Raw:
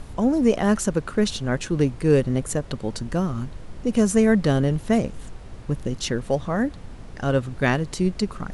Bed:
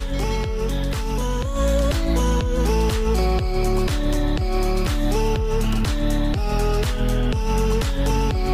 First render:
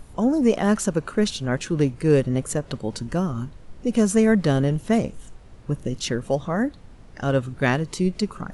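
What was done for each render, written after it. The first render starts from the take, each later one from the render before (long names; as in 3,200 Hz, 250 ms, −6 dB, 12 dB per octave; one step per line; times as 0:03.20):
noise reduction from a noise print 7 dB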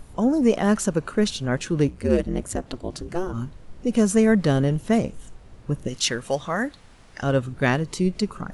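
0:01.87–0:03.32: ring modulation 58 Hz → 200 Hz
0:05.88–0:07.23: tilt shelving filter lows −6.5 dB, about 700 Hz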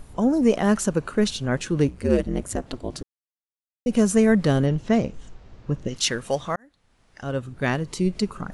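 0:03.03–0:03.86: silence
0:04.66–0:05.96: low-pass filter 6,500 Hz 24 dB per octave
0:06.56–0:08.15: fade in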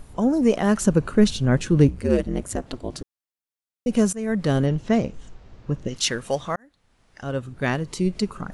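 0:00.81–0:02.01: low-shelf EQ 280 Hz +9 dB
0:04.13–0:04.56: fade in, from −21 dB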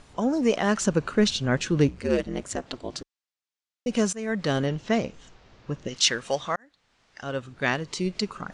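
Bessel low-pass filter 5,000 Hz, order 6
spectral tilt +2.5 dB per octave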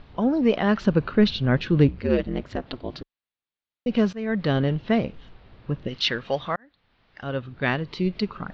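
Butterworth low-pass 4,300 Hz 36 dB per octave
low-shelf EQ 230 Hz +7 dB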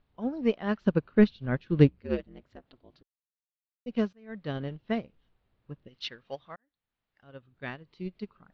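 expander for the loud parts 2.5 to 1, over −29 dBFS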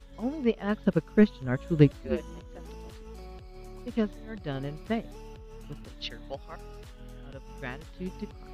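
mix in bed −25 dB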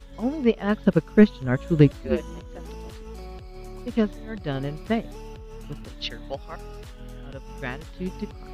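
level +5.5 dB
brickwall limiter −3 dBFS, peak gain reduction 3 dB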